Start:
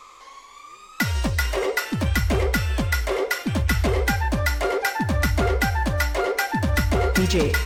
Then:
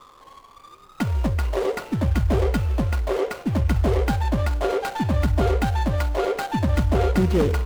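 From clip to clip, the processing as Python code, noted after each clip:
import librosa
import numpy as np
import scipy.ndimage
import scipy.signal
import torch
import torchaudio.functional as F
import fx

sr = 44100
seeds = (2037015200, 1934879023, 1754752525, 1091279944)

y = scipy.signal.medfilt(x, 25)
y = y * 10.0 ** (1.5 / 20.0)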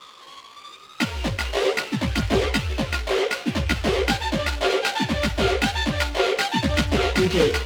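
y = fx.weighting(x, sr, curve='D')
y = fx.chorus_voices(y, sr, voices=2, hz=1.1, base_ms=16, depth_ms=3.0, mix_pct=50)
y = y * 10.0 ** (4.5 / 20.0)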